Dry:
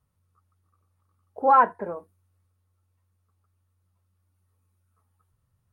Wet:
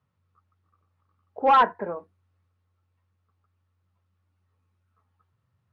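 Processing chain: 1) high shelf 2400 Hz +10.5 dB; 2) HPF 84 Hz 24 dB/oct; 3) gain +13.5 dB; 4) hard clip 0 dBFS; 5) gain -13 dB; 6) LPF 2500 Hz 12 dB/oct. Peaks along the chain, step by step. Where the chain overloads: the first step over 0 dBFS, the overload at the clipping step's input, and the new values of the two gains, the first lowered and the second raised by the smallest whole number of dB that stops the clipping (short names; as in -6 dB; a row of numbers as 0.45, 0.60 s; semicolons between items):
-6.5, -6.5, +7.0, 0.0, -13.0, -12.5 dBFS; step 3, 7.0 dB; step 3 +6.5 dB, step 5 -6 dB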